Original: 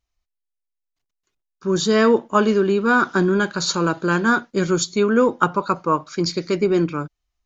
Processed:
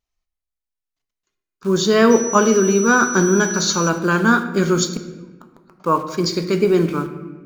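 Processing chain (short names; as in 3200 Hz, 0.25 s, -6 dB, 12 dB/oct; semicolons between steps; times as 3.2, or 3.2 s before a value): low shelf 63 Hz -4.5 dB; 4.9–5.8 flipped gate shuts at -16 dBFS, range -36 dB; wow and flutter 27 cents; in parallel at -6 dB: bit-crush 6-bit; 2.1–3.88 on the sum: whine 5900 Hz -23 dBFS; on a send at -7 dB: reverb RT60 1.2 s, pre-delay 4 ms; on the sum: gain -2 dB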